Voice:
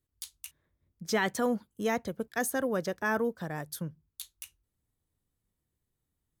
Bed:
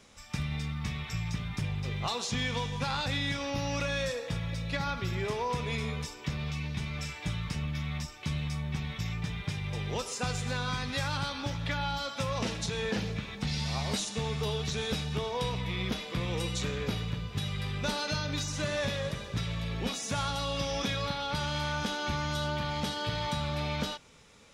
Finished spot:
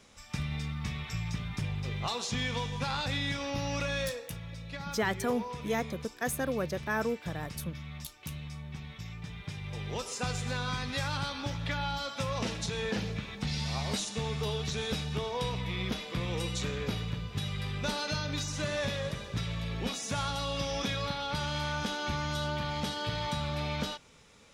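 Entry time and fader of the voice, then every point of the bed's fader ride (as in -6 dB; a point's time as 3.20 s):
3.85 s, -2.0 dB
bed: 4.06 s -1 dB
4.29 s -8 dB
9.17 s -8 dB
10.16 s -1 dB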